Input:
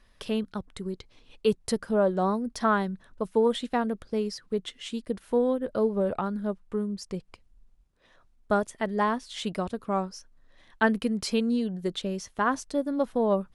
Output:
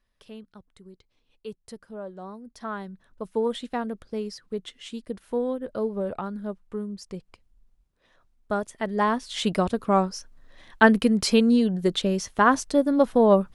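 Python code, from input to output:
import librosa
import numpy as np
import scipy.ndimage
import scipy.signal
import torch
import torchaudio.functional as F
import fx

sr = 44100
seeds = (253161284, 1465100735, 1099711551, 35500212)

y = fx.gain(x, sr, db=fx.line((2.29, -14.0), (3.38, -2.5), (8.54, -2.5), (9.49, 7.0)))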